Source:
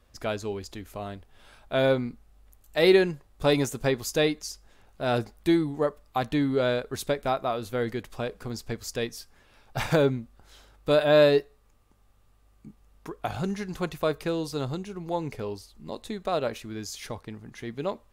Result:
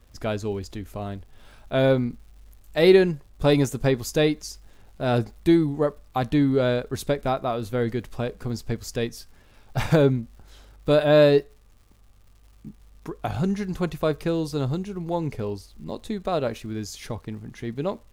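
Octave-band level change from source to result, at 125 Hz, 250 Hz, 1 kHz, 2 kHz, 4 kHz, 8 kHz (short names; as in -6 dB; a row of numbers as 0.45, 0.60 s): +7.0, +5.0, +1.0, +0.5, 0.0, 0.0 dB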